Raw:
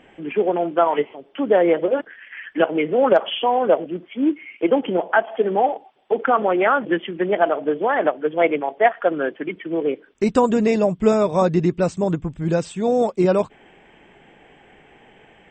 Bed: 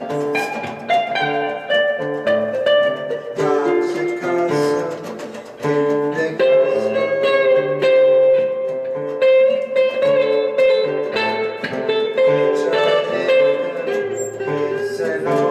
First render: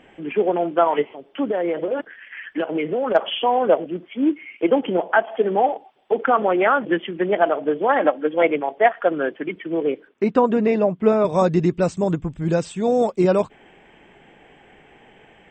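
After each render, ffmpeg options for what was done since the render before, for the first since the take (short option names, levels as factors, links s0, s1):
-filter_complex "[0:a]asettb=1/sr,asplit=3[s0][s1][s2];[s0]atrim=end=1.444[s3];[s1]atrim=start=1.44:end=3.15,asetpts=PTS-STARTPTS,afade=t=in:d=0.004:c=qsin,afade=t=out:st=1.706:d=0.004:c=qsin,acompressor=threshold=0.126:ratio=10:attack=3.2:release=140:knee=1:detection=peak[s4];[s2]atrim=start=3.146[s5];[s3][s4]acrossfade=d=0.004:c1=hsin:c2=qsin[s6];[s6][s5]acrossfade=d=0.004:c1=qsin:c2=hsin,asettb=1/sr,asplit=3[s7][s8][s9];[s7]atrim=end=7.884[s10];[s8]atrim=start=7.88:end=8.43,asetpts=PTS-STARTPTS,afade=t=in:d=0.004:c=qsin,afade=t=out:st=0.546:d=0.004:c=qsin,aecho=1:1:3.7:0.56,atrim=end_sample=24255[s11];[s9]atrim=start=8.426[s12];[s10][s11]acrossfade=d=0.004:c1=hsin:c2=qsin[s13];[s13][s12]acrossfade=d=0.004:c1=qsin:c2=hsin,asettb=1/sr,asplit=3[s14][s15][s16];[s14]atrim=end=10.084[s17];[s15]atrim=start=10.08:end=11.25,asetpts=PTS-STARTPTS,afade=t=in:d=0.004:c=qsin,afade=t=out:st=1.166:d=0.004:c=qsin,highpass=170,lowpass=2600[s18];[s16]atrim=start=11.246[s19];[s17][s18]acrossfade=d=0.004:c1=hsin:c2=qsin[s20];[s20][s19]acrossfade=d=0.004:c1=qsin:c2=hsin"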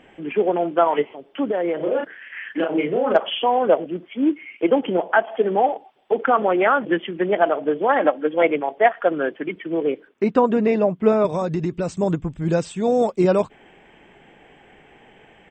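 -filter_complex "[0:a]asplit=3[s0][s1][s2];[s0]afade=t=out:st=1.79:d=0.02[s3];[s1]asplit=2[s4][s5];[s5]adelay=34,volume=0.794[s6];[s4][s6]amix=inputs=2:normalize=0,afade=t=in:st=1.79:d=0.02,afade=t=out:st=3.16:d=0.02[s7];[s2]afade=t=in:st=3.16:d=0.02[s8];[s3][s7][s8]amix=inputs=3:normalize=0,asplit=3[s9][s10][s11];[s9]afade=t=out:st=11.26:d=0.02[s12];[s10]acompressor=threshold=0.112:ratio=5:attack=3.2:release=140:knee=1:detection=peak,afade=t=in:st=11.26:d=0.02,afade=t=out:st=11.89:d=0.02[s13];[s11]afade=t=in:st=11.89:d=0.02[s14];[s12][s13][s14]amix=inputs=3:normalize=0"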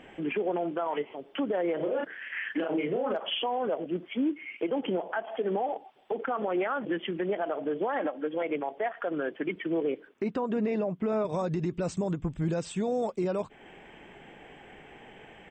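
-af "acompressor=threshold=0.0251:ratio=1.5,alimiter=limit=0.0841:level=0:latency=1:release=77"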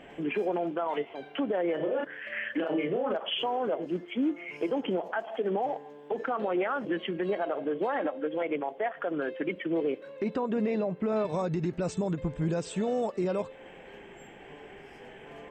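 -filter_complex "[1:a]volume=0.0282[s0];[0:a][s0]amix=inputs=2:normalize=0"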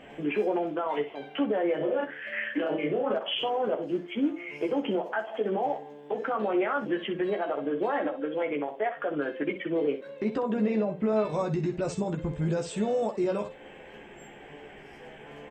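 -af "aecho=1:1:14|63:0.562|0.282"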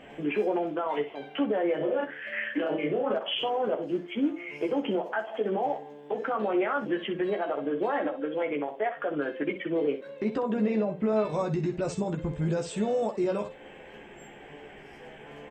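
-af anull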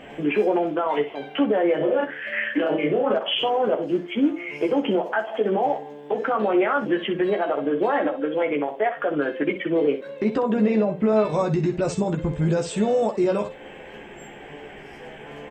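-af "volume=2.11"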